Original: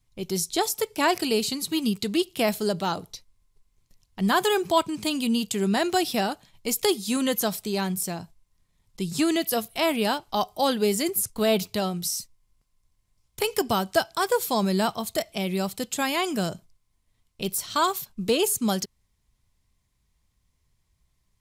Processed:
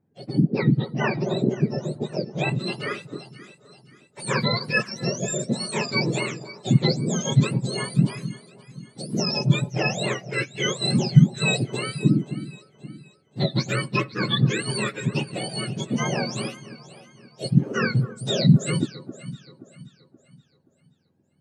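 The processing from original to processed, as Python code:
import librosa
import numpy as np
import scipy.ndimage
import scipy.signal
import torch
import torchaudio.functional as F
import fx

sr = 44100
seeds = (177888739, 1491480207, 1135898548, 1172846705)

y = fx.octave_mirror(x, sr, pivot_hz=1300.0)
y = fx.vibrato(y, sr, rate_hz=4.3, depth_cents=14.0)
y = fx.echo_alternate(y, sr, ms=263, hz=1200.0, feedback_pct=62, wet_db=-12.5)
y = fx.filter_sweep_lowpass(y, sr, from_hz=2400.0, to_hz=6100.0, start_s=2.15, end_s=3.47, q=0.8)
y = y * 10.0 ** (1.0 / 20.0)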